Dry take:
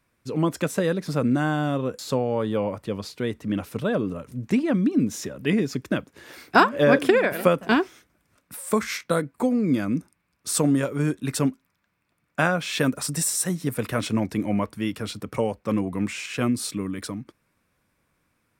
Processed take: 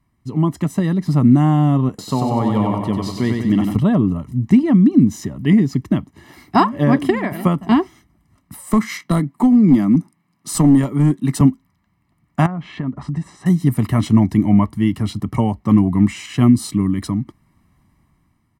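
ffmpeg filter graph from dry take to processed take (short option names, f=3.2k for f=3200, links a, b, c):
-filter_complex "[0:a]asettb=1/sr,asplit=3[a][b][c];[a]atrim=end=1.894[d];[b]atrim=start=1.89:end=3.76,asetpts=PTS-STARTPTS,afade=t=in:d=0.004:c=qsin,afade=t=out:st=1.866:d=0.004:c=qsin,lowshelf=f=190:g=-10.5,aecho=1:1:94|188|282|376|470|564|658:0.631|0.347|0.191|0.105|0.0577|0.0318|0.0175,atrim=end_sample=82467[e];[c]atrim=start=3.756[f];[d][e]acrossfade=d=0.004:c1=hsin:c2=qsin[g];[g][f]acrossfade=d=0.004:c1=qsin:c2=hsin,asettb=1/sr,asplit=3[h][i][j];[h]atrim=end=8.704[k];[i]atrim=start=8.7:end=11.41,asetpts=PTS-STARTPTS,afade=t=in:d=0.004:c=qsin,afade=t=out:st=2.706:d=0.004:c=qsin,highpass=f=140:w=0.5412,highpass=f=140:w=1.3066,aeval=exprs='clip(val(0),-1,0.119)':c=same[l];[j]atrim=start=11.406[m];[k][l]acrossfade=d=0.004:c1=hsin:c2=qsin[n];[n][m]acrossfade=d=0.004:c1=qsin:c2=hsin,asettb=1/sr,asplit=3[o][p][q];[o]atrim=end=12.464[r];[p]atrim=start=12.46:end=13.46,asetpts=PTS-STARTPTS,afade=t=in:d=0.004:c=qsin,afade=t=out:st=0.996:d=0.004:c=qsin,lowpass=1.9k,acompressor=threshold=-34dB:ratio=2.5:attack=3.2:release=140:knee=1:detection=peak[s];[q]atrim=start=13.456[t];[r][s]acrossfade=d=0.004:c1=hsin:c2=qsin[u];[u][t]acrossfade=d=0.004:c1=qsin:c2=hsin,tiltshelf=f=770:g=6,aecho=1:1:1:0.85,dynaudnorm=f=260:g=7:m=11.5dB,volume=-1dB"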